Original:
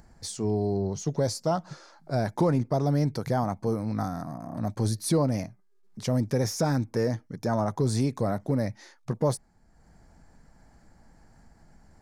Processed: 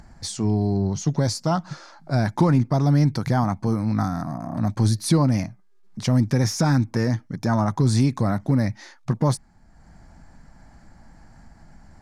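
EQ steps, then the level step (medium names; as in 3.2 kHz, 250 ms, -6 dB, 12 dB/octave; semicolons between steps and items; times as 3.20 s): dynamic bell 610 Hz, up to -6 dB, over -40 dBFS, Q 1.8; peaking EQ 440 Hz -8 dB 0.58 oct; treble shelf 9.8 kHz -11.5 dB; +8.0 dB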